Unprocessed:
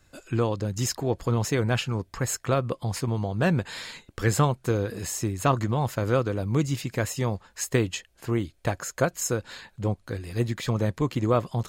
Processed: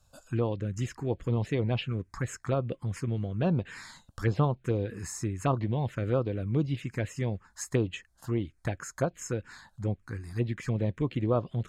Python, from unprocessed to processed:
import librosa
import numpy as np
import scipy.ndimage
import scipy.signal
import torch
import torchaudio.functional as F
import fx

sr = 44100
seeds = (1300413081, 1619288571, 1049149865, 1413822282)

y = fx.env_lowpass_down(x, sr, base_hz=2400.0, full_db=-19.0)
y = fx.env_phaser(y, sr, low_hz=330.0, high_hz=2000.0, full_db=-18.5)
y = y * 10.0 ** (-3.0 / 20.0)